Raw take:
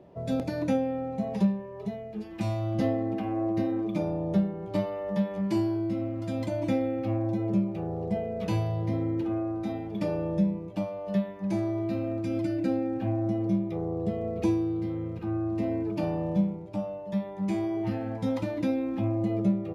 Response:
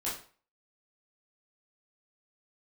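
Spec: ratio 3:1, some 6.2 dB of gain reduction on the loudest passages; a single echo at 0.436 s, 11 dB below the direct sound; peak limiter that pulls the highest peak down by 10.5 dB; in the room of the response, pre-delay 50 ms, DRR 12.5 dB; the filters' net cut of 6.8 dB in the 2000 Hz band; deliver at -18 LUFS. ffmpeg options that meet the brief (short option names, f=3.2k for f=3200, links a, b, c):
-filter_complex "[0:a]equalizer=f=2k:t=o:g=-8.5,acompressor=threshold=-28dB:ratio=3,alimiter=level_in=5.5dB:limit=-24dB:level=0:latency=1,volume=-5.5dB,aecho=1:1:436:0.282,asplit=2[a][b];[1:a]atrim=start_sample=2205,adelay=50[c];[b][c]afir=irnorm=-1:irlink=0,volume=-17dB[d];[a][d]amix=inputs=2:normalize=0,volume=19dB"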